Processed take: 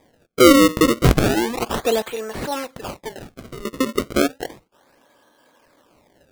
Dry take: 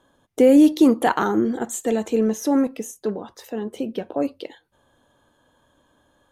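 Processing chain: high-pass 450 Hz 12 dB/octave, from 2.02 s 960 Hz, from 3.65 s 270 Hz; decimation with a swept rate 31×, swing 160% 0.33 Hz; trim +6.5 dB

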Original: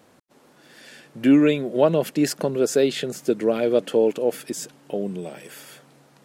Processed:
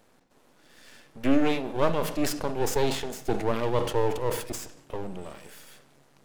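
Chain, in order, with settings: half-wave rectifier; on a send at -13 dB: reverberation RT60 0.80 s, pre-delay 31 ms; on the sum: decay stretcher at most 88 dB/s; trim -2.5 dB

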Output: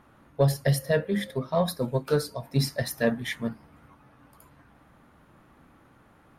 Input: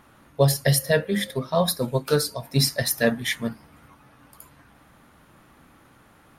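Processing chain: treble shelf 2.5 kHz -9.5 dB; in parallel at -7 dB: saturation -16 dBFS, distortion -13 dB; on the sum: trim -5 dB

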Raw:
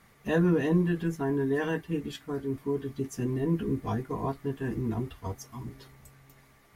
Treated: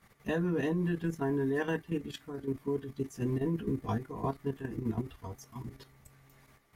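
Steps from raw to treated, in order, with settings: level held to a coarse grid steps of 10 dB

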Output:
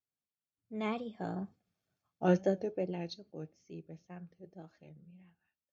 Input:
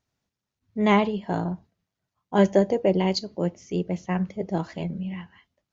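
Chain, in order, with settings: Doppler pass-by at 1.86 s, 23 m/s, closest 4.2 m; wow and flutter 86 cents; comb of notches 980 Hz

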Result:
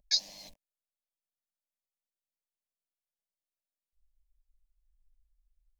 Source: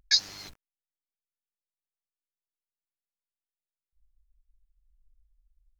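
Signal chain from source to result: peaking EQ 600 Hz +7.5 dB 0.33 oct; static phaser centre 370 Hz, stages 6; trim -4 dB

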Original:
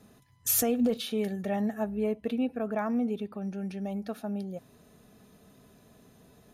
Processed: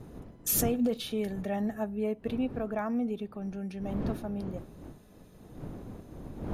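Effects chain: wind noise 270 Hz -40 dBFS; trim -2 dB

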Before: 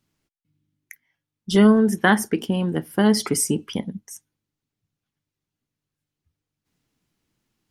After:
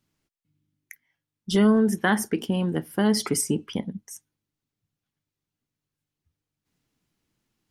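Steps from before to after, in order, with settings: 3.41–3.99 s: treble shelf 5.1 kHz -6.5 dB; in parallel at +2 dB: peak limiter -12 dBFS, peak gain reduction 9 dB; on the sum: trim -9 dB

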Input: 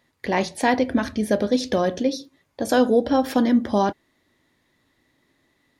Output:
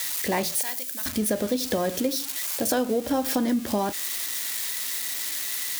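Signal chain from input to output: zero-crossing glitches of -19 dBFS; 0.61–1.06 s: pre-emphasis filter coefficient 0.97; compression 6:1, threshold -21 dBFS, peak gain reduction 8.5 dB

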